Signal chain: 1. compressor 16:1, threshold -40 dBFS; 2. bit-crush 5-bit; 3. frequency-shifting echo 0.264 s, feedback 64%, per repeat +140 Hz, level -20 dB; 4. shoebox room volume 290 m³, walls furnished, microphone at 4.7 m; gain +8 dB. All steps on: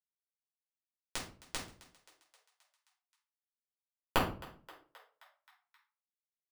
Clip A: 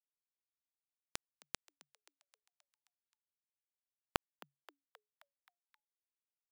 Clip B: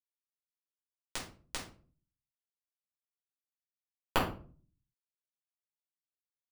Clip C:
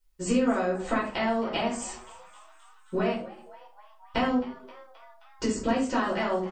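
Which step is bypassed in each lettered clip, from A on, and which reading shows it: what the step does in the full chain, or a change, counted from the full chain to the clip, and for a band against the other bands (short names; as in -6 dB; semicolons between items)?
4, momentary loudness spread change -2 LU; 3, momentary loudness spread change -8 LU; 2, crest factor change -13.5 dB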